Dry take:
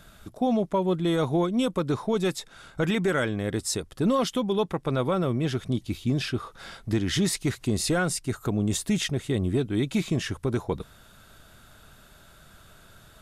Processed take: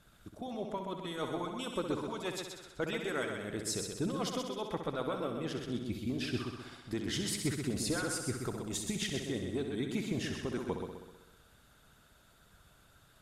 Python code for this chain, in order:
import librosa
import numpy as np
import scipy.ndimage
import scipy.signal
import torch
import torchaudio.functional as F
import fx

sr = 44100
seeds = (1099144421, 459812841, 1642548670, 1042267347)

y = fx.hpss(x, sr, part='harmonic', gain_db=-12)
y = fx.cheby_harmonics(y, sr, harmonics=(2,), levels_db=(-27,), full_scale_db=-15.0)
y = fx.echo_heads(y, sr, ms=64, heads='first and second', feedback_pct=53, wet_db=-8)
y = F.gain(torch.from_numpy(y), -7.5).numpy()